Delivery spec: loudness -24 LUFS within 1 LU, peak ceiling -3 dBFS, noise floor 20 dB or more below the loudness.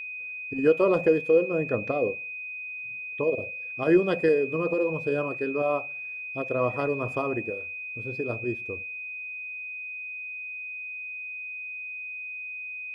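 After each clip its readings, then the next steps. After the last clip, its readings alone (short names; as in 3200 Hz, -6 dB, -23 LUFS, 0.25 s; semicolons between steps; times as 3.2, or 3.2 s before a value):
steady tone 2500 Hz; tone level -34 dBFS; loudness -28.0 LUFS; peak -9.5 dBFS; loudness target -24.0 LUFS
-> notch 2500 Hz, Q 30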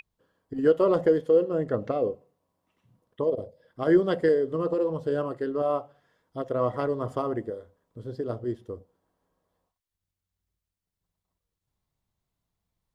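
steady tone none; loudness -26.5 LUFS; peak -10.0 dBFS; loudness target -24.0 LUFS
-> gain +2.5 dB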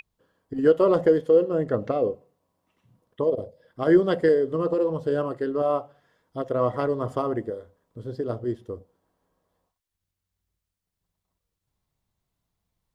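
loudness -24.0 LUFS; peak -7.5 dBFS; noise floor -84 dBFS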